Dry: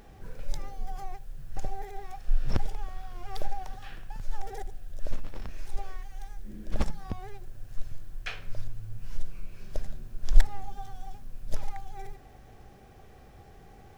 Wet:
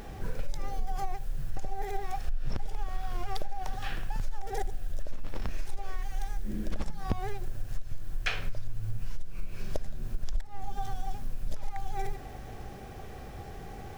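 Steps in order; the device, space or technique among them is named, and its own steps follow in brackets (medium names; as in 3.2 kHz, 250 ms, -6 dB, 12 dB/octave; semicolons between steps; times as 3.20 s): serial compression, leveller first (compression 3:1, threshold -24 dBFS, peak gain reduction 13.5 dB; compression 6:1, threshold -33 dBFS, peak gain reduction 14 dB); trim +9 dB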